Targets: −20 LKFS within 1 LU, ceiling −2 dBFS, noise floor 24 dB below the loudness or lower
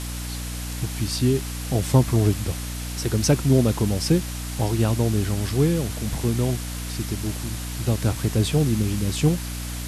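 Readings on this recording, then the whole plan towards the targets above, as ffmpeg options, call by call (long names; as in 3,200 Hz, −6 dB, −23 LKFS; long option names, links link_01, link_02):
mains hum 60 Hz; hum harmonics up to 300 Hz; level of the hum −30 dBFS; background noise floor −31 dBFS; target noise floor −48 dBFS; integrated loudness −23.5 LKFS; sample peak −6.5 dBFS; target loudness −20.0 LKFS
→ -af "bandreject=frequency=60:width_type=h:width=6,bandreject=frequency=120:width_type=h:width=6,bandreject=frequency=180:width_type=h:width=6,bandreject=frequency=240:width_type=h:width=6,bandreject=frequency=300:width_type=h:width=6"
-af "afftdn=noise_reduction=17:noise_floor=-31"
-af "volume=3.5dB"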